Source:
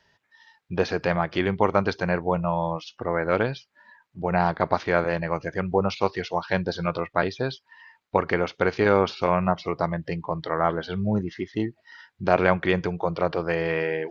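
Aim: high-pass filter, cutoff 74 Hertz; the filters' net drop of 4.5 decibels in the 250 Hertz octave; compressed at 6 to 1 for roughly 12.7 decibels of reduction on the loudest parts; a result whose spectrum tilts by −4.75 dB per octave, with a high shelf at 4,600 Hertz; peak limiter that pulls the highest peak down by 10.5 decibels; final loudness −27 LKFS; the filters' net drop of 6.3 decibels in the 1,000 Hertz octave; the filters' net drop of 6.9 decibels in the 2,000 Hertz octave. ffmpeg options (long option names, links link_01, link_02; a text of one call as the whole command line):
ffmpeg -i in.wav -af "highpass=74,equalizer=frequency=250:width_type=o:gain=-7,equalizer=frequency=1000:width_type=o:gain=-6.5,equalizer=frequency=2000:width_type=o:gain=-8,highshelf=frequency=4600:gain=8.5,acompressor=threshold=-32dB:ratio=6,volume=13dB,alimiter=limit=-13.5dB:level=0:latency=1" out.wav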